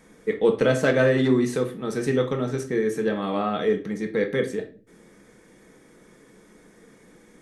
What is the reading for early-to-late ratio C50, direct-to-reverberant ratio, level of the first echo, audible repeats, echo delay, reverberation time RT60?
13.0 dB, 4.5 dB, none, none, none, 0.40 s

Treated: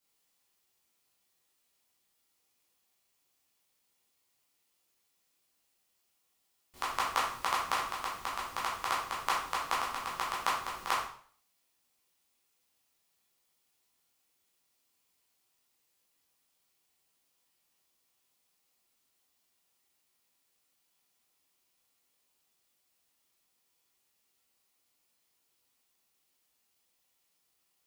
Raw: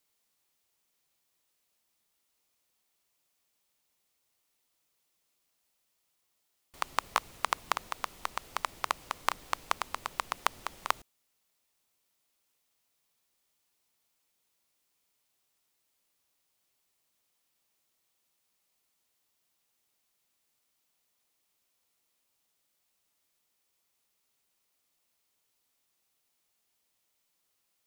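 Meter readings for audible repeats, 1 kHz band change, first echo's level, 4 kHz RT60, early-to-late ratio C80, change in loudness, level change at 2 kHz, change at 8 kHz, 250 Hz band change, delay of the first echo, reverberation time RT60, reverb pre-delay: none, +1.5 dB, none, 0.50 s, 8.0 dB, +1.5 dB, +1.0 dB, +1.0 dB, +2.0 dB, none, 0.50 s, 6 ms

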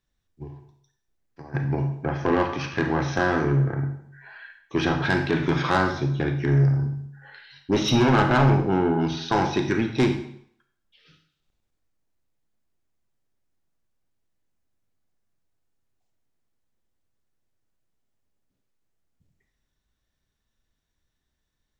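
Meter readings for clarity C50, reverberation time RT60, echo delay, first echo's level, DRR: 8.5 dB, 0.65 s, none, none, 6.0 dB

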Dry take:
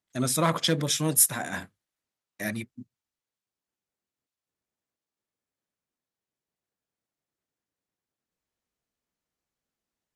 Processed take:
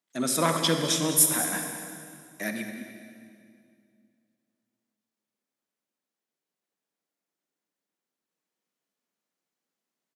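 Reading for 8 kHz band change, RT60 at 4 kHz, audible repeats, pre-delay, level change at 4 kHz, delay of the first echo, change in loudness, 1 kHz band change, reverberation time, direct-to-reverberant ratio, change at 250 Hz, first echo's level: +1.0 dB, 2.0 s, 2, 36 ms, +1.0 dB, 0.204 s, +0.5 dB, +1.0 dB, 2.3 s, 5.0 dB, +1.0 dB, -14.0 dB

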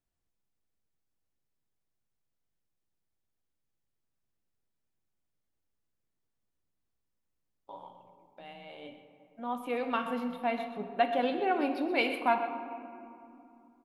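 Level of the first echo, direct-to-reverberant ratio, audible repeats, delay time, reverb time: -12.5 dB, 6.0 dB, 1, 0.126 s, 2.7 s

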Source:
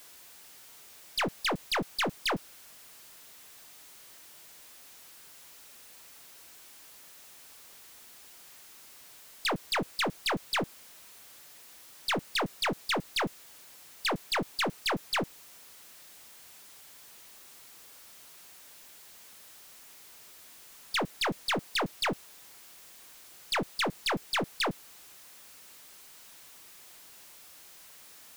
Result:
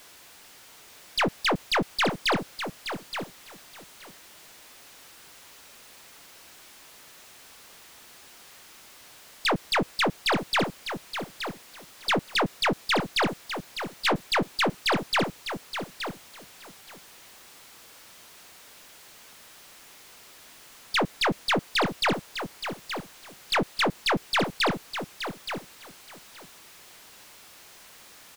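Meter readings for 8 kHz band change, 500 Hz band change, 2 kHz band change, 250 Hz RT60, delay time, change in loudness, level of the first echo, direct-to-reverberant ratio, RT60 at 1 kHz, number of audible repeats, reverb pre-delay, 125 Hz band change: +2.0 dB, +6.5 dB, +6.0 dB, none, 0.873 s, +4.0 dB, -9.0 dB, none, none, 2, none, +6.5 dB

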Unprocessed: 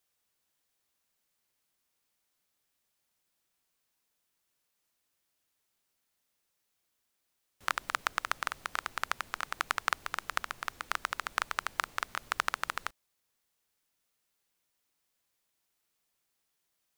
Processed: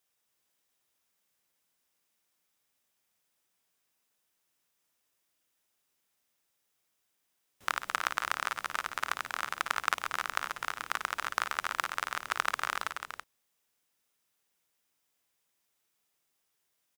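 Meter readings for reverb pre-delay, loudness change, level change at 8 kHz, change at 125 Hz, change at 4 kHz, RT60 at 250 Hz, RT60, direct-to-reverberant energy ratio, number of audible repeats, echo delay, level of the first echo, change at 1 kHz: none, +1.5 dB, +1.5 dB, -0.5 dB, +1.0 dB, none, none, none, 4, 55 ms, -9.0 dB, +1.5 dB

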